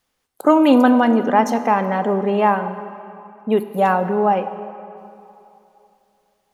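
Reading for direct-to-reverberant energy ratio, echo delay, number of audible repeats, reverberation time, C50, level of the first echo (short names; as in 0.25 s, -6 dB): 10.5 dB, none, none, 2.9 s, 11.0 dB, none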